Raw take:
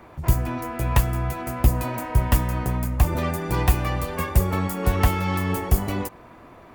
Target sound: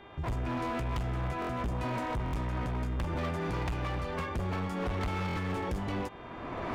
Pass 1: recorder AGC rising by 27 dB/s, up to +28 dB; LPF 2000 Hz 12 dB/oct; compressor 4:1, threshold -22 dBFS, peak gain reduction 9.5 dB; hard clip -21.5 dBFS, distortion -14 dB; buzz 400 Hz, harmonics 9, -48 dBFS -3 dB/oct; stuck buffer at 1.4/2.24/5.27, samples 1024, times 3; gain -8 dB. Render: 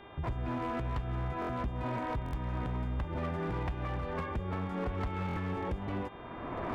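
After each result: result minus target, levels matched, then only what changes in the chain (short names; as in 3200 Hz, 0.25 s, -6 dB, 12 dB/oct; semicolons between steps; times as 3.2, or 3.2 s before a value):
compressor: peak gain reduction +9.5 dB; 4000 Hz band -4.5 dB
remove: compressor 4:1, threshold -22 dBFS, peak gain reduction 9.5 dB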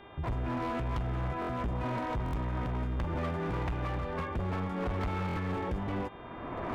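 4000 Hz band -3.5 dB
change: LPF 4500 Hz 12 dB/oct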